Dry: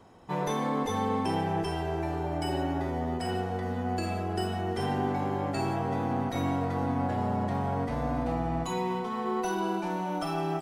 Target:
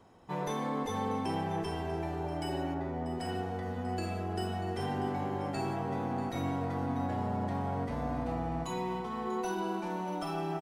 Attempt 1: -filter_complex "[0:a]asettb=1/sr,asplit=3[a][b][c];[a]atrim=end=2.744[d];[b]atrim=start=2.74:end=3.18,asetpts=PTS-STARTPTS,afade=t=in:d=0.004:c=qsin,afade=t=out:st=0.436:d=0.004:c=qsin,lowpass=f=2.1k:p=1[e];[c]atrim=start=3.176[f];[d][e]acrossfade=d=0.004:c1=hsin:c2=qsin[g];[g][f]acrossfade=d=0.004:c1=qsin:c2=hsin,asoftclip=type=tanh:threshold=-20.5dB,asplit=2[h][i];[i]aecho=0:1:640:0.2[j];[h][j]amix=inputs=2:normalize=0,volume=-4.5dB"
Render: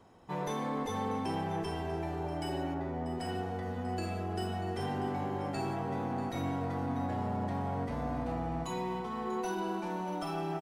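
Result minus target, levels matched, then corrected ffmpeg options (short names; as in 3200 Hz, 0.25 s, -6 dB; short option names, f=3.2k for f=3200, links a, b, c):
soft clip: distortion +15 dB
-filter_complex "[0:a]asettb=1/sr,asplit=3[a][b][c];[a]atrim=end=2.744[d];[b]atrim=start=2.74:end=3.18,asetpts=PTS-STARTPTS,afade=t=in:d=0.004:c=qsin,afade=t=out:st=0.436:d=0.004:c=qsin,lowpass=f=2.1k:p=1[e];[c]atrim=start=3.176[f];[d][e]acrossfade=d=0.004:c1=hsin:c2=qsin[g];[g][f]acrossfade=d=0.004:c1=qsin:c2=hsin,asoftclip=type=tanh:threshold=-12dB,asplit=2[h][i];[i]aecho=0:1:640:0.2[j];[h][j]amix=inputs=2:normalize=0,volume=-4.5dB"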